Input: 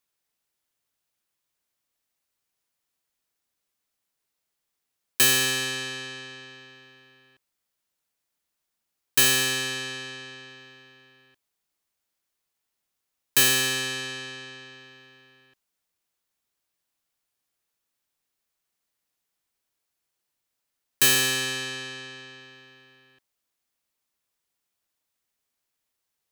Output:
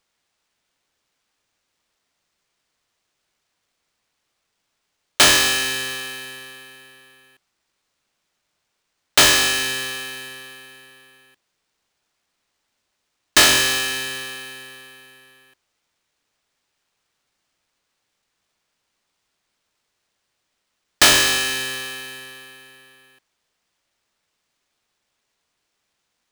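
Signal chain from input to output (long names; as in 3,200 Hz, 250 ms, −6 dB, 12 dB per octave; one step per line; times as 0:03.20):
low-shelf EQ 260 Hz −10 dB
sample-rate reduction 13,000 Hz, jitter 0%
level +6.5 dB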